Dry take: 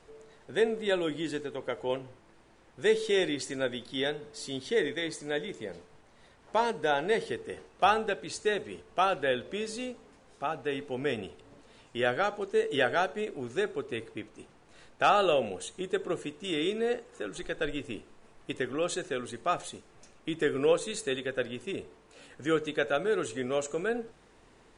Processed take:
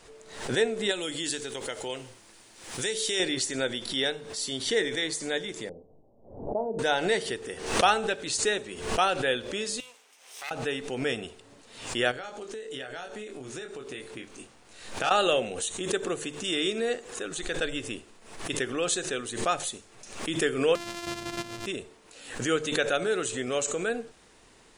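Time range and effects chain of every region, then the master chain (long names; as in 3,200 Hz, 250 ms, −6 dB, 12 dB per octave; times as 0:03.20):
0:00.91–0:03.20: high-shelf EQ 3,200 Hz +11.5 dB + downward compressor 2.5 to 1, threshold −33 dBFS
0:05.69–0:06.79: Butterworth low-pass 710 Hz + flutter between parallel walls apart 7.5 metres, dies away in 0.2 s
0:09.80–0:10.51: lower of the sound and its delayed copy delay 0.35 ms + high-pass filter 890 Hz + downward compressor 5 to 1, threshold −48 dBFS
0:12.11–0:15.11: double-tracking delay 23 ms −4.5 dB + downward compressor 12 to 1, threshold −36 dBFS
0:20.75–0:21.66: samples sorted by size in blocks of 128 samples + downward compressor 1.5 to 1, threshold −39 dBFS + high-frequency loss of the air 65 metres
whole clip: high-shelf EQ 2,800 Hz +11 dB; mains-hum notches 50/100/150 Hz; background raised ahead of every attack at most 85 dB per second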